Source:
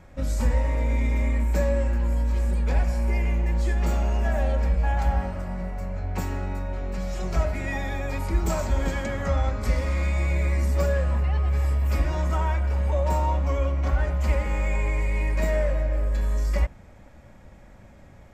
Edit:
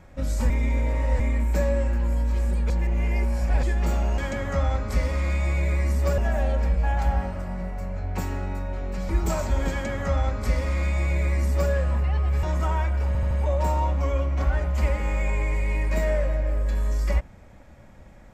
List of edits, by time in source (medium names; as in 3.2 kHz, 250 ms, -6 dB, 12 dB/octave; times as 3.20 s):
0.50–1.20 s: reverse
2.70–3.63 s: reverse
7.09–8.29 s: delete
8.91–10.91 s: copy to 4.18 s
11.63–12.13 s: delete
12.77 s: stutter 0.08 s, 4 plays